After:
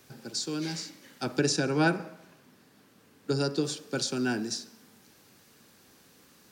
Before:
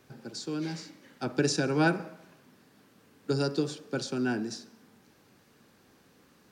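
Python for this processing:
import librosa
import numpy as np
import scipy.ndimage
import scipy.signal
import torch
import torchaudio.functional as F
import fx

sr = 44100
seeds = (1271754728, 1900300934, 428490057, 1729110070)

y = fx.high_shelf(x, sr, hz=3200.0, db=fx.steps((0.0, 10.5), (1.38, 3.0), (3.63, 10.0)))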